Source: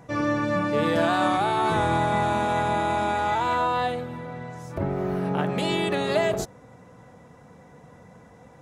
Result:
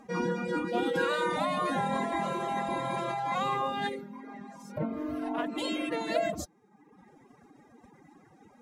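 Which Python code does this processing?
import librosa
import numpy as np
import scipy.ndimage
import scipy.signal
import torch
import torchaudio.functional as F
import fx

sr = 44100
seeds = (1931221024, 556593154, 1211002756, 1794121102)

y = fx.dereverb_blind(x, sr, rt60_s=1.0)
y = fx.pitch_keep_formants(y, sr, semitones=8.5)
y = F.gain(torch.from_numpy(y), -4.0).numpy()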